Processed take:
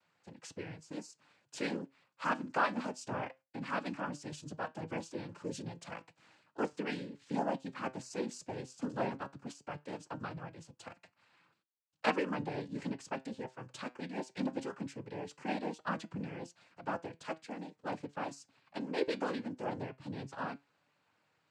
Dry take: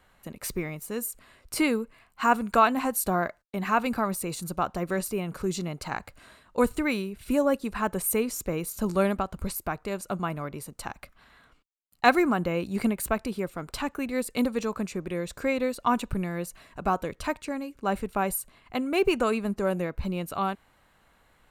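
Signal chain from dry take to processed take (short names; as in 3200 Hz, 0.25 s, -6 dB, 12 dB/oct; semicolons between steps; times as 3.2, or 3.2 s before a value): noise vocoder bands 8; flange 0.18 Hz, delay 5.6 ms, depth 2.5 ms, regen +79%; gain -6.5 dB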